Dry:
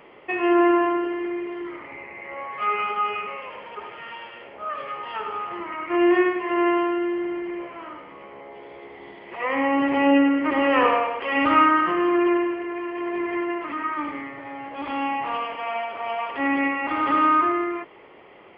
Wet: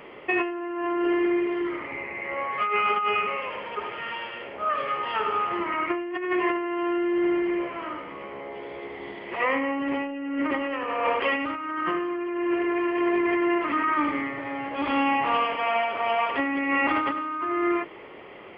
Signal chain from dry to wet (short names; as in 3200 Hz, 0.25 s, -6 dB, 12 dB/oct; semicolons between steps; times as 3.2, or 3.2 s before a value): bell 820 Hz -3 dB 0.61 oct; de-hum 164.6 Hz, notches 32; negative-ratio compressor -27 dBFS, ratio -1; gain +1.5 dB